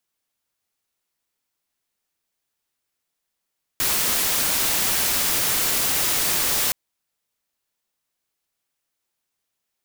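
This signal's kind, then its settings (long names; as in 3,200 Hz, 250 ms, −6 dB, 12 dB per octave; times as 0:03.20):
noise white, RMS −21.5 dBFS 2.92 s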